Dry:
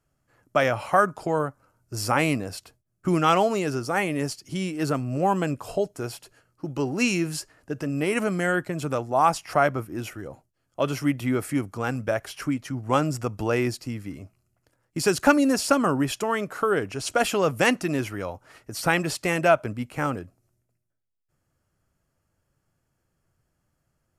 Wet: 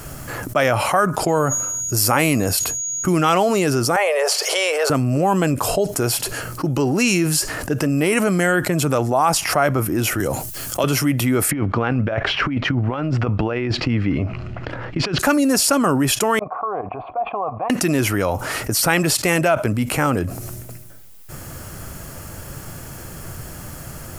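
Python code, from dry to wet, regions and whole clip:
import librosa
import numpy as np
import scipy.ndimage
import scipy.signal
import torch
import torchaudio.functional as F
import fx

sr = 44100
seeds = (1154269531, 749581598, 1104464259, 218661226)

y = fx.peak_eq(x, sr, hz=12000.0, db=6.0, octaves=0.44, at=(1.27, 3.12), fade=0.02)
y = fx.dmg_tone(y, sr, hz=6700.0, level_db=-51.0, at=(1.27, 3.12), fade=0.02)
y = fx.sustainer(y, sr, db_per_s=130.0, at=(1.27, 3.12), fade=0.02)
y = fx.chain(y, sr, fx.steep_highpass(hz=470.0, slope=72),
    fx.tilt_eq(slope=-4.0),
    fx.env_flatten(amount_pct=50), at=(3.96, 4.9))
y = fx.chain(y, sr, fx.high_shelf(hz=3200.0, db=12.0),
    fx.band_squash(depth_pct=40), at=(10.2, 10.84))
y = fx.chain(y, sr, fx.lowpass(hz=3300.0, slope=24),
    fx.over_compress(threshold_db=-31.0, ratio=-0.5), at=(11.51, 15.19))
y = fx.chain(y, sr, fx.level_steps(step_db=14),
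    fx.formant_cascade(vowel='a'), at=(16.39, 17.7))
y = fx.high_shelf(y, sr, hz=9800.0, db=11.0)
y = fx.env_flatten(y, sr, amount_pct=70)
y = F.gain(torch.from_numpy(y), -1.0).numpy()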